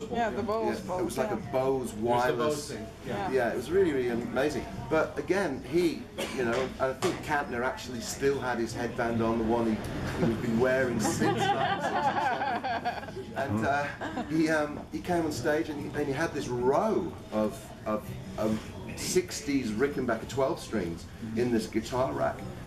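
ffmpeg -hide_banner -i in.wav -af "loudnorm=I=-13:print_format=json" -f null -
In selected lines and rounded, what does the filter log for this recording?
"input_i" : "-30.1",
"input_tp" : "-13.2",
"input_lra" : "2.9",
"input_thresh" : "-40.1",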